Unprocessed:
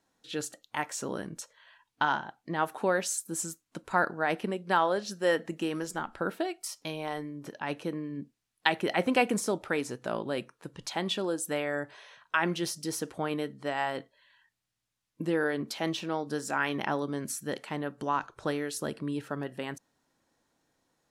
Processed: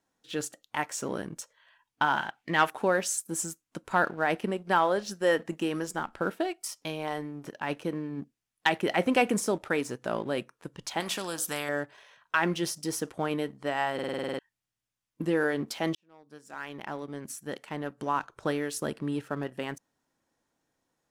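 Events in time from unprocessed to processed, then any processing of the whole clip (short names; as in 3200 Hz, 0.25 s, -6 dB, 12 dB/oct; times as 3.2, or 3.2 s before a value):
2.17–2.7 bell 2500 Hz +13.5 dB 1.8 oct
11–11.69 spectral compressor 2:1
13.94 stutter in place 0.05 s, 9 plays
15.95–18.45 fade in
whole clip: bell 4100 Hz -4 dB 0.27 oct; sample leveller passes 1; gain -2 dB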